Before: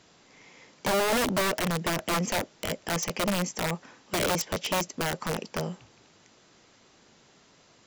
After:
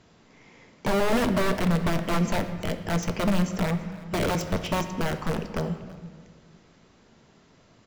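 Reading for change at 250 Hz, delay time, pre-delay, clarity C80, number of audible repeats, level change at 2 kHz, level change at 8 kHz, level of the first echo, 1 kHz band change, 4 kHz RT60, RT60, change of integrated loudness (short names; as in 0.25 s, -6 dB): +6.0 dB, 0.331 s, 3 ms, 11.0 dB, 1, -1.0 dB, -6.5 dB, -20.5 dB, +0.5 dB, 1.1 s, 1.6 s, +1.5 dB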